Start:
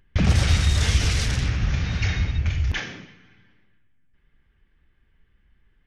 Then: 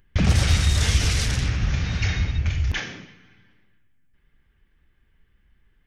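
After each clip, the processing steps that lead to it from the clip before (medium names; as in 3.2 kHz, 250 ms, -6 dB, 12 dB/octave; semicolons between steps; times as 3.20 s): treble shelf 8.2 kHz +6.5 dB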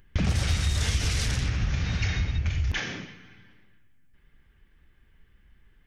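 compression 2.5:1, threshold -29 dBFS, peak gain reduction 11 dB; trim +3 dB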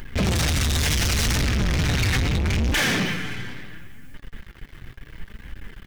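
peak limiter -21 dBFS, peak gain reduction 7 dB; waveshaping leveller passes 5; flange 0.72 Hz, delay 3.2 ms, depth 5.1 ms, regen +63%; trim +7 dB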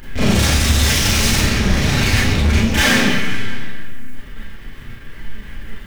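Schroeder reverb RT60 0.49 s, combs from 28 ms, DRR -8.5 dB; trim -1.5 dB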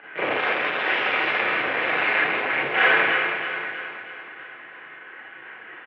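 hard clipper -12 dBFS, distortion -13 dB; feedback delay 319 ms, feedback 52%, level -8.5 dB; mistuned SSB -88 Hz 510–2700 Hz; trim +1.5 dB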